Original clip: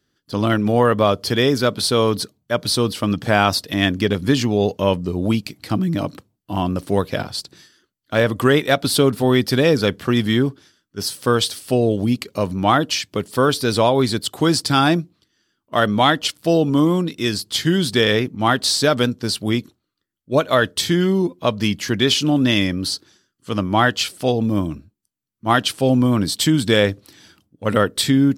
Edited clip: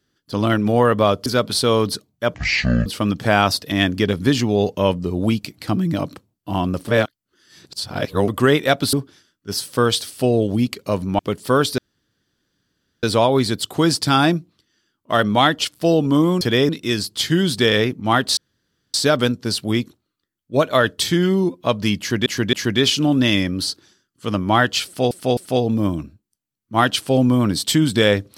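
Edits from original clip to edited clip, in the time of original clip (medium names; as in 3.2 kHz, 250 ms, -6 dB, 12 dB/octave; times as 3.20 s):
1.26–1.54 s: move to 17.04 s
2.62–2.88 s: speed 50%
6.90–8.30 s: reverse
8.95–10.42 s: delete
12.68–13.07 s: delete
13.66 s: insert room tone 1.25 s
18.72 s: insert room tone 0.57 s
21.77–22.04 s: loop, 3 plays
24.09–24.35 s: loop, 3 plays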